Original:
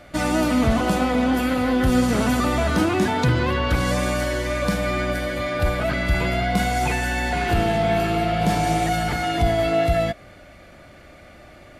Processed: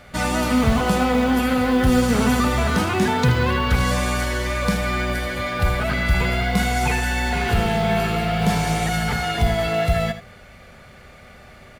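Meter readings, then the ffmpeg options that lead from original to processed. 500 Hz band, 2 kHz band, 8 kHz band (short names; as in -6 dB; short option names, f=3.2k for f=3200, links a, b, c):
-1.0 dB, +2.0 dB, +2.5 dB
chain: -filter_complex "[0:a]superequalizer=6b=0.282:8b=0.562,acrusher=bits=8:mode=log:mix=0:aa=0.000001,asplit=2[a][b];[b]aecho=0:1:78:0.266[c];[a][c]amix=inputs=2:normalize=0,volume=2dB"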